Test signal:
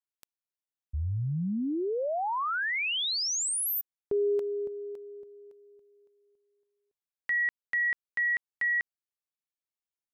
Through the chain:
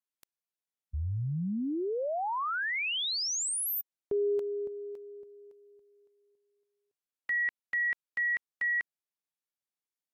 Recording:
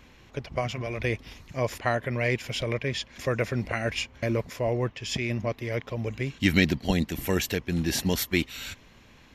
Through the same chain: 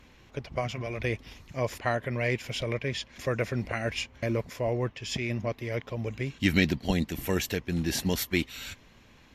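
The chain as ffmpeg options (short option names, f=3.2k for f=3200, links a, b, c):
-af "volume=-2dB" -ar 48000 -c:a libvorbis -b:a 96k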